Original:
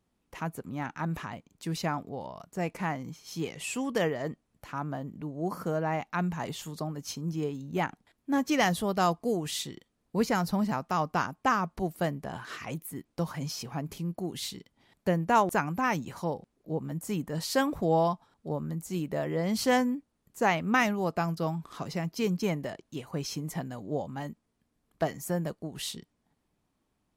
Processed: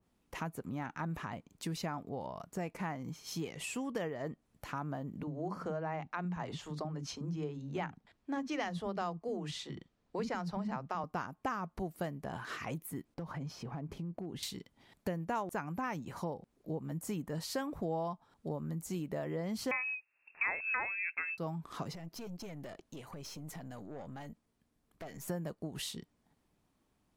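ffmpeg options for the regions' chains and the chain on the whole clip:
-filter_complex "[0:a]asettb=1/sr,asplit=3[a][b][c];[a]atrim=end=5.234[d];[b]atrim=start=5.23:end=11.04,asetpts=PTS-STARTPTS,afade=t=in:d=0.004:c=qsin,afade=t=out:st=5.806:d=0.004:c=qsin,lowpass=5.6k,acrossover=split=270[e][f];[e]adelay=40[g];[g][f]amix=inputs=2:normalize=0,atrim=end_sample=256221[h];[c]atrim=start=11.036[i];[d][h]acrossfade=d=0.004:c1=hsin:c2=qsin[j];[j][i]acrossfade=d=0.004:c1=qsin:c2=hsin,asettb=1/sr,asplit=3[k][l][m];[k]atrim=end=13.144[n];[l]atrim=start=13.14:end=14.43,asetpts=PTS-STARTPTS,afade=t=in:d=0.004:c=qsin,afade=t=out:st=1.286:d=0.004:c=qsin,lowpass=f=1.2k:p=1,acompressor=threshold=-37dB:ratio=4:attack=3.2:release=140:knee=1:detection=peak,aeval=exprs='clip(val(0),-1,0.0224)':c=same[o];[m]atrim=start=14.426[p];[n][o]acrossfade=d=0.004:c1=hsin:c2=qsin[q];[q][p]acrossfade=d=0.004:c1=qsin:c2=hsin,asettb=1/sr,asplit=3[r][s][t];[r]atrim=end=19.714[u];[s]atrim=start=19.71:end=21.38,asetpts=PTS-STARTPTS,afade=t=in:d=0.004:c=qsin,afade=t=out:st=1.666:d=0.004:c=qsin,highpass=42,acontrast=34,lowpass=f=2.4k:t=q:w=0.5098,lowpass=f=2.4k:t=q:w=0.6013,lowpass=f=2.4k:t=q:w=0.9,lowpass=f=2.4k:t=q:w=2.563,afreqshift=-2800[v];[t]atrim=start=21.376[w];[u][v]acrossfade=d=0.004:c1=hsin:c2=qsin[x];[x][w]acrossfade=d=0.004:c1=qsin:c2=hsin,asettb=1/sr,asplit=3[y][z][aa];[y]atrim=end=21.954[ab];[z]atrim=start=21.95:end=25.28,asetpts=PTS-STARTPTS,afade=t=in:d=0.004:c=qsin,afade=t=out:st=3.326:d=0.004:c=qsin,acompressor=threshold=-42dB:ratio=3:attack=3.2:release=140:knee=1:detection=peak,aeval=exprs='(tanh(112*val(0)+0.5)-tanh(0.5))/112':c=same[ac];[aa]atrim=start=25.276[ad];[ab][ac]acrossfade=d=0.004:c1=hsin:c2=qsin[ae];[ae][ad]acrossfade=d=0.004:c1=qsin:c2=hsin,acompressor=threshold=-38dB:ratio=3,adynamicequalizer=threshold=0.00158:dfrequency=2300:dqfactor=0.7:tfrequency=2300:tqfactor=0.7:attack=5:release=100:ratio=0.375:range=2.5:mode=cutabove:tftype=highshelf,volume=1dB"

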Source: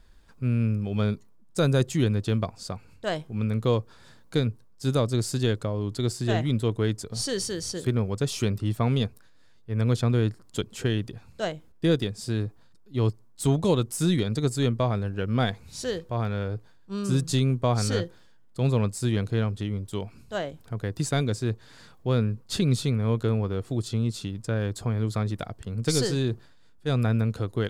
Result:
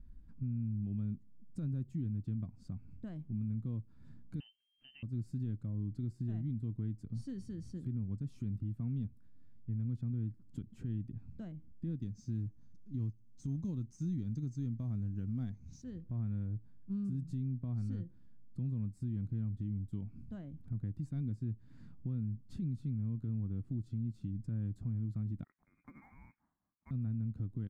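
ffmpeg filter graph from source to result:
-filter_complex "[0:a]asettb=1/sr,asplit=3[a][b][c];[a]atrim=end=4.404[d];[b]atrim=start=4.4:end=5.03,asetpts=PTS-STARTPTS,afade=t=in:d=0.004:c=qsin,afade=t=out:st=0.626:d=0.004:c=qsin,equalizer=f=470:w=1.6:g=6.5,lowpass=f=2.7k:t=q:w=0.5098,lowpass=f=2.7k:t=q:w=0.6013,lowpass=f=2.7k:t=q:w=0.9,lowpass=f=2.7k:t=q:w=2.563,afreqshift=-3200[e];[c]atrim=start=5.026[f];[d][e]acrossfade=d=0.004:c1=hsin:c2=qsin[g];[g][f]acrossfade=d=0.004:c1=qsin:c2=hsin,asettb=1/sr,asplit=3[h][i][j];[h]atrim=end=12.024[k];[i]atrim=start=12.02:end=15.82,asetpts=PTS-STARTPTS,afade=t=in:d=0.004:c=qsin,afade=t=out:st=3.796:d=0.004:c=qsin,lowpass=f=6.2k:t=q:w=14,acrusher=bits=6:mode=log:mix=0:aa=0.000001[l];[j]atrim=start=15.816[m];[k][l]acrossfade=d=0.004:c1=hsin:c2=qsin[n];[n][m]acrossfade=d=0.004:c1=qsin:c2=hsin,asettb=1/sr,asplit=3[o][p][q];[o]atrim=end=25.444[r];[p]atrim=start=25.44:end=26.91,asetpts=PTS-STARTPTS,afade=t=in:d=0.004:c=qsin,afade=t=out:st=1.466:d=0.004:c=qsin,highpass=1.2k,lowpass=f=2.2k:t=q:w=0.5098,lowpass=f=2.2k:t=q:w=0.6013,lowpass=f=2.2k:t=q:w=0.9,lowpass=f=2.2k:t=q:w=2.563,afreqshift=-2600,acrusher=bits=5:mode=log:mix=0:aa=0.000001[s];[q]atrim=start=26.906[t];[r][s]acrossfade=d=0.004:c1=hsin:c2=qsin[u];[u][t]acrossfade=d=0.004:c1=qsin:c2=hsin,acompressor=threshold=-38dB:ratio=3,firequalizer=gain_entry='entry(260,0);entry(430,-22);entry(2300,-23);entry(3300,-29)':delay=0.05:min_phase=1,alimiter=level_in=9dB:limit=-24dB:level=0:latency=1:release=51,volume=-9dB,volume=2.5dB"

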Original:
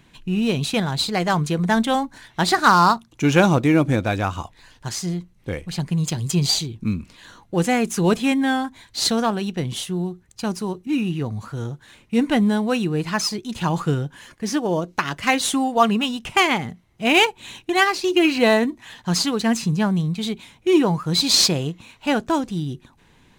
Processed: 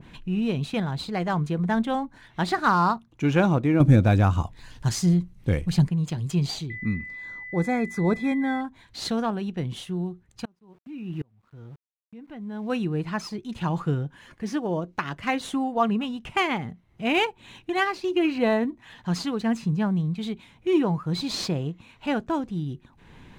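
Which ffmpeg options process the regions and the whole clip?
-filter_complex "[0:a]asettb=1/sr,asplit=3[a][b][c];[a]atrim=end=3.804[d];[b]atrim=start=3.8:end=5.89,asetpts=PTS-STARTPTS,afade=t=in:d=0.004:c=qsin,afade=t=out:st=2.086:d=0.004:c=qsin,bass=f=250:g=6,treble=f=4k:g=9,acontrast=31[e];[c]atrim=start=5.886[f];[d][e]acrossfade=d=0.004:c1=hsin:c2=qsin[g];[g][f]acrossfade=d=0.004:c1=qsin:c2=hsin,asettb=1/sr,asplit=3[h][i][j];[h]atrim=end=6.704[k];[i]atrim=start=6.7:end=8.61,asetpts=PTS-STARTPTS,afade=t=in:d=0.004:c=qsin,afade=t=out:st=1.906:d=0.004:c=qsin,aeval=exprs='val(0)+0.0447*sin(2*PI*2000*n/s)':c=same,asuperstop=centerf=2900:order=20:qfactor=4.9[l];[j]atrim=start=8.606[m];[k][l]acrossfade=d=0.004:c1=hsin:c2=qsin[n];[n][m]acrossfade=d=0.004:c1=qsin:c2=hsin,asettb=1/sr,asplit=3[o][p][q];[o]atrim=end=10.454[r];[p]atrim=start=10.45:end=12.7,asetpts=PTS-STARTPTS,afade=t=in:d=0.004:c=qsin,afade=t=out:st=2.246:d=0.004:c=qsin,aemphasis=mode=reproduction:type=50fm,aeval=exprs='val(0)*gte(abs(val(0)),0.0119)':c=same,aeval=exprs='val(0)*pow(10,-36*if(lt(mod(-1.3*n/s,1),2*abs(-1.3)/1000),1-mod(-1.3*n/s,1)/(2*abs(-1.3)/1000),(mod(-1.3*n/s,1)-2*abs(-1.3)/1000)/(1-2*abs(-1.3)/1000))/20)':c=same[s];[q]atrim=start=12.696[t];[r][s]acrossfade=d=0.004:c1=hsin:c2=qsin[u];[u][t]acrossfade=d=0.004:c1=qsin:c2=hsin,bass=f=250:g=3,treble=f=4k:g=-9,acompressor=mode=upward:threshold=-30dB:ratio=2.5,adynamicequalizer=threshold=0.02:dfrequency=1500:dqfactor=0.7:tfrequency=1500:tqfactor=0.7:attack=5:release=100:ratio=0.375:range=2.5:mode=cutabove:tftype=highshelf,volume=-6dB"

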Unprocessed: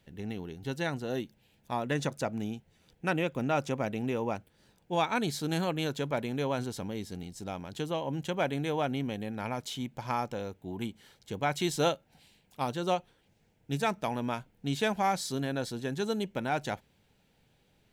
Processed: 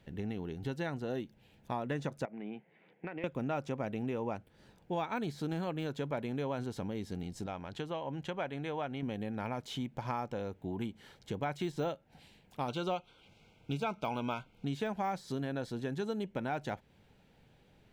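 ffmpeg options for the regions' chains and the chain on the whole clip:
-filter_complex "[0:a]asettb=1/sr,asplit=3[a][b][c];[a]atrim=end=2.254[d];[b]atrim=start=2.25:end=3.24,asetpts=PTS-STARTPTS,afade=t=in:d=0.004:c=qsin,afade=t=out:st=0.986:d=0.004:c=qsin,highpass=f=190:w=0.5412,highpass=f=190:w=1.3066,equalizer=f=250:t=q:w=4:g=-8,equalizer=f=1.3k:t=q:w=4:g=-5,equalizer=f=2.1k:t=q:w=4:g=8,lowpass=f=2.7k:w=0.5412,lowpass=f=2.7k:w=1.3066,acompressor=threshold=-39dB:ratio=10:attack=3.2:release=140:knee=1:detection=peak[e];[c]atrim=start=3.236[f];[d][e]acrossfade=d=0.004:c1=hsin:c2=qsin[g];[g][f]acrossfade=d=0.004:c1=qsin:c2=hsin,asettb=1/sr,asplit=3[h][i][j];[h]atrim=end=7.464[k];[i]atrim=start=7.46:end=9.03,asetpts=PTS-STARTPTS,afade=t=in:d=0.004:c=qsin,afade=t=out:st=1.566:d=0.004:c=qsin,lowpass=f=3.6k:p=1,equalizer=f=210:w=0.35:g=-7[l];[j]atrim=start=9.026[m];[k][l]acrossfade=d=0.004:c1=hsin:c2=qsin[n];[n][m]acrossfade=d=0.004:c1=qsin:c2=hsin,asettb=1/sr,asplit=3[o][p][q];[o]atrim=end=12.684[r];[p]atrim=start=12.68:end=14.65,asetpts=PTS-STARTPTS,afade=t=in:d=0.004:c=qsin,afade=t=out:st=1.966:d=0.004:c=qsin,asuperstop=centerf=1800:order=12:qfactor=3.4,equalizer=f=3k:w=0.42:g=11.5[s];[q]atrim=start=14.646[t];[r][s]acrossfade=d=0.004:c1=hsin:c2=qsin[u];[u][t]acrossfade=d=0.004:c1=qsin:c2=hsin,deesser=0.95,highshelf=f=4.1k:g=-10.5,acompressor=threshold=-41dB:ratio=2.5,volume=4.5dB"

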